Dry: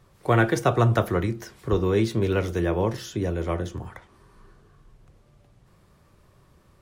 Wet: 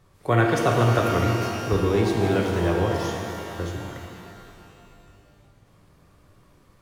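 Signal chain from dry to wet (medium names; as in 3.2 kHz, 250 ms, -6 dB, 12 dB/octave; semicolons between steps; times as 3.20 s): 3.12–3.59 s: compression, threshold -39 dBFS, peak gain reduction 16 dB; pitch-shifted reverb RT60 2.4 s, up +12 st, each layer -8 dB, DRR 1 dB; trim -1.5 dB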